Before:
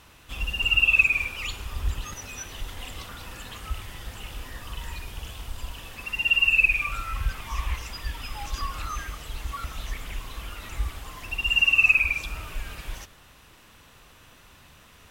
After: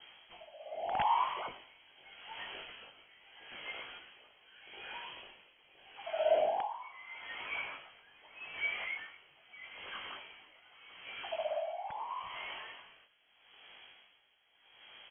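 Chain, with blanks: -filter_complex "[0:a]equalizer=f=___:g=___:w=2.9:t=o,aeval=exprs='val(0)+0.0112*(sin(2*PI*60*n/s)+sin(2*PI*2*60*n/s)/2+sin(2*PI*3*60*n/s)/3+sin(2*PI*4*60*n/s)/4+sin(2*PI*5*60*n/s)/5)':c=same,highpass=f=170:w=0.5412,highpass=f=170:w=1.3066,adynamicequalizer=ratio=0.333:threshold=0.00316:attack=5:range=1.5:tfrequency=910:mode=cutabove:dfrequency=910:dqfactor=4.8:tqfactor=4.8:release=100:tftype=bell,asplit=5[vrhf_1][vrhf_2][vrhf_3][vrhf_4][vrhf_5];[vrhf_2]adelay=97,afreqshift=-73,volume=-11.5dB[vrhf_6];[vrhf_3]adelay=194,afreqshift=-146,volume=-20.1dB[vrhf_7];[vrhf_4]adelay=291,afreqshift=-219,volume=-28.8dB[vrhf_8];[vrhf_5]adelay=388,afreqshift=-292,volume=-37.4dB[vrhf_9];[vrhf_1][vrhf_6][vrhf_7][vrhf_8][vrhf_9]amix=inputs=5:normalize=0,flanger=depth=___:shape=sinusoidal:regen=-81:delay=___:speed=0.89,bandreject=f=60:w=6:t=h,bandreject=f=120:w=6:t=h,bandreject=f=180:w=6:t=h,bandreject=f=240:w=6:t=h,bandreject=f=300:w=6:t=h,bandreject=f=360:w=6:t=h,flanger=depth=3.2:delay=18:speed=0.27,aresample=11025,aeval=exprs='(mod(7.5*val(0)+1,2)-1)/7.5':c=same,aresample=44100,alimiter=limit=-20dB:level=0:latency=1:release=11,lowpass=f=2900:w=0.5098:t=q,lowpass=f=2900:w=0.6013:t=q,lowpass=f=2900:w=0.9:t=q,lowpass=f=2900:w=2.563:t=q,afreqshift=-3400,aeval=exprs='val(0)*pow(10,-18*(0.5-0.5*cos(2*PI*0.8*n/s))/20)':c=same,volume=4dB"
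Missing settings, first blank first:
370, 5.5, 7.9, 0.5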